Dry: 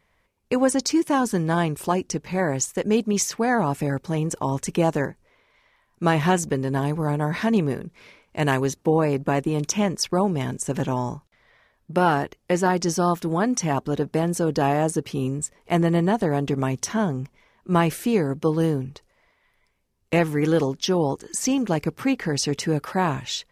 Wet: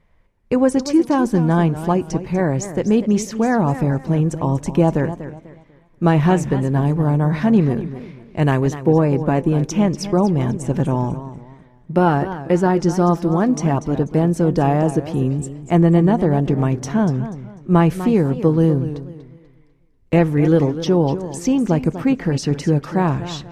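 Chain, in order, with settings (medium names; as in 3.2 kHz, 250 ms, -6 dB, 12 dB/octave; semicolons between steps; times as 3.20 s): tilt EQ -2.5 dB/octave; reverberation, pre-delay 3 ms, DRR 15.5 dB; modulated delay 245 ms, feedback 31%, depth 143 cents, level -12.5 dB; trim +1 dB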